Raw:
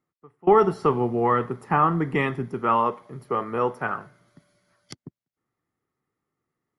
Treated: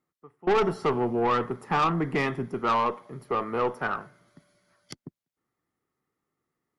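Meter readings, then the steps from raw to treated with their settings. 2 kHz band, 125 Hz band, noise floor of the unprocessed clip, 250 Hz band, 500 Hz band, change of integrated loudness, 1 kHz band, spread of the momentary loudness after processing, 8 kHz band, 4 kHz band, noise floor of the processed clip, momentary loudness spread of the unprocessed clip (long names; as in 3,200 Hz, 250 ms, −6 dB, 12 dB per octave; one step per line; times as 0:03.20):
−1.0 dB, −4.5 dB, below −85 dBFS, −3.5 dB, −4.0 dB, −3.5 dB, −3.5 dB, 11 LU, can't be measured, +5.0 dB, below −85 dBFS, 11 LU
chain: harmonic generator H 4 −20 dB, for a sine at −7 dBFS
soft clipping −18 dBFS, distortion −10 dB
parametric band 110 Hz −4 dB 0.82 octaves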